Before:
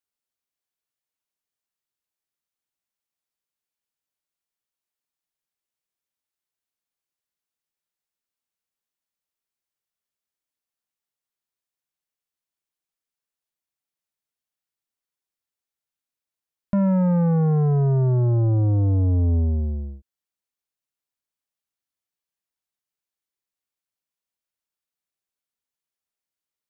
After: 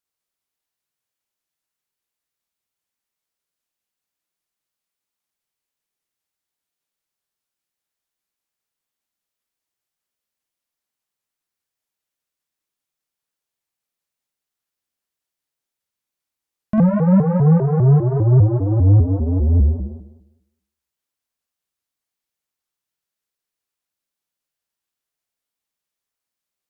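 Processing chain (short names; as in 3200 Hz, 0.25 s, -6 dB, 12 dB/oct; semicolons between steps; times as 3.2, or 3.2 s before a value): flutter echo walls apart 8.7 m, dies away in 0.92 s; shaped vibrato saw up 5 Hz, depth 250 cents; gain +2 dB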